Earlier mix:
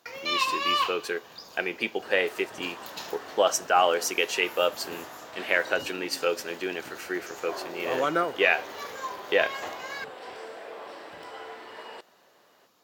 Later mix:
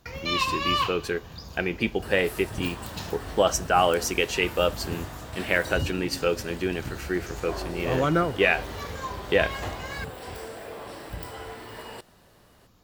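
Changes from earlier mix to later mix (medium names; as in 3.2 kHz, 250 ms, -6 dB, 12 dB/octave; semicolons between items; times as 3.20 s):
second sound: remove distance through air 100 m; master: remove high-pass 410 Hz 12 dB/octave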